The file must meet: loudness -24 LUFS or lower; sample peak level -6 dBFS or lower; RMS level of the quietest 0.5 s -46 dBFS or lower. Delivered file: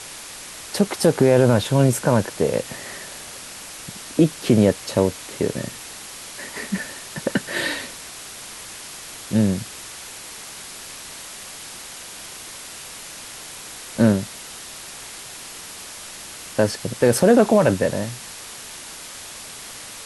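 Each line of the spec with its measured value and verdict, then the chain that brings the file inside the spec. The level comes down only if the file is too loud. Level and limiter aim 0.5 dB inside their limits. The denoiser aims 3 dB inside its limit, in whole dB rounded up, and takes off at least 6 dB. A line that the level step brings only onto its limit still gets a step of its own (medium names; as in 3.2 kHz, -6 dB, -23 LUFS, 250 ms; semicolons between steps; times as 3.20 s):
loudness -20.5 LUFS: fail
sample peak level -4.5 dBFS: fail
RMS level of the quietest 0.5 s -37 dBFS: fail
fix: noise reduction 8 dB, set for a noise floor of -37 dBFS; trim -4 dB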